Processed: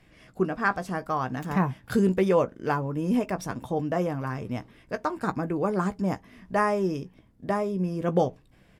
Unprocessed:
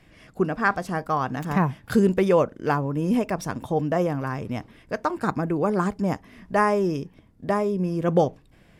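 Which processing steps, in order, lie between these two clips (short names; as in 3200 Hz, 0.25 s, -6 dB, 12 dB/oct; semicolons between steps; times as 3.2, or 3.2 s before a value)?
doubler 16 ms -10.5 dB; gain -3.5 dB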